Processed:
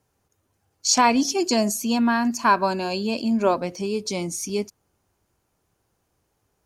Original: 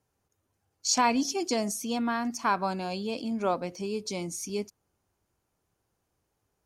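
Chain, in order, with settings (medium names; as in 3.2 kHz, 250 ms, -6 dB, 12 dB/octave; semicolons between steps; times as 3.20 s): 1.38–3.58 s: rippled EQ curve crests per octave 1.4, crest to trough 7 dB; trim +6.5 dB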